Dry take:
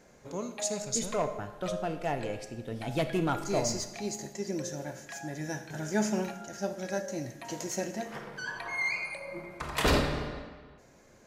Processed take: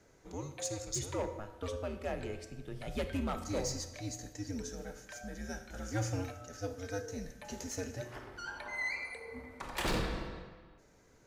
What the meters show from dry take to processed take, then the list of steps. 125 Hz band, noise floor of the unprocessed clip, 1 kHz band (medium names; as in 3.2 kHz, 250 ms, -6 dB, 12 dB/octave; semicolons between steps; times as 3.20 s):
-3.5 dB, -58 dBFS, -7.5 dB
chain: frequency shift -96 Hz; overload inside the chain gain 22.5 dB; trim -5.5 dB